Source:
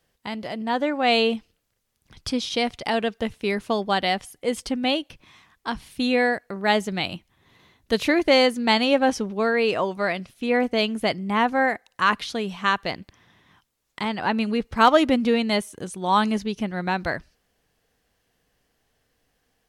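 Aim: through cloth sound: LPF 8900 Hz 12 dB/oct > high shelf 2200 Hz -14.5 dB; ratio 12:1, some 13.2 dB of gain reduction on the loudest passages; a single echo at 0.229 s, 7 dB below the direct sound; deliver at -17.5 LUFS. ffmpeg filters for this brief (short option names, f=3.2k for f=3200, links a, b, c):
-af "acompressor=threshold=-24dB:ratio=12,lowpass=8.9k,highshelf=f=2.2k:g=-14.5,aecho=1:1:229:0.447,volume=13.5dB"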